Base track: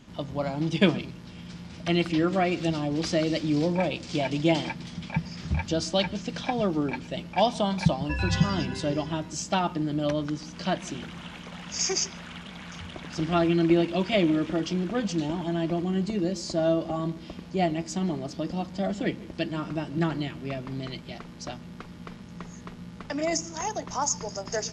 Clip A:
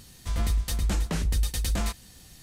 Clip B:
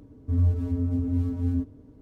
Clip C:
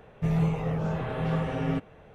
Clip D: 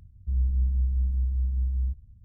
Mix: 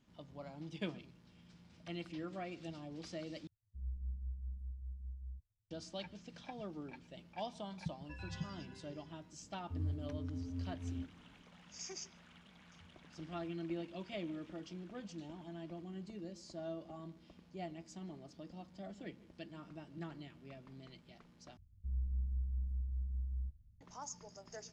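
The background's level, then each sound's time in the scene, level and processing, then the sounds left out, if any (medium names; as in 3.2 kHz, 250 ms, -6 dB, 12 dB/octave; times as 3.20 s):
base track -20 dB
3.47 s: replace with D -16.5 dB + expander on every frequency bin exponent 2
9.42 s: add B -16.5 dB
21.57 s: replace with D -13 dB
not used: A, C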